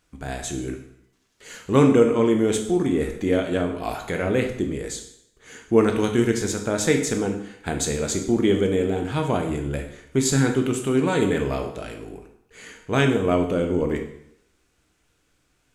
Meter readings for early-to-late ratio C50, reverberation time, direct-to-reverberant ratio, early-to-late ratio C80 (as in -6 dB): 8.0 dB, 0.75 s, 3.5 dB, 10.5 dB